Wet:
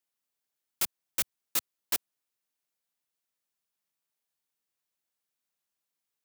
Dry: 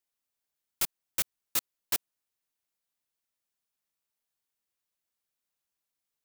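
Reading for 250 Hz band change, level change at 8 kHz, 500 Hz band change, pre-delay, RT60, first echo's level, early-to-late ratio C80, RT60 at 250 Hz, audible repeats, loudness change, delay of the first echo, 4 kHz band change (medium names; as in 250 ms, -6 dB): 0.0 dB, 0.0 dB, 0.0 dB, no reverb, no reverb, no echo, no reverb, no reverb, no echo, 0.0 dB, no echo, 0.0 dB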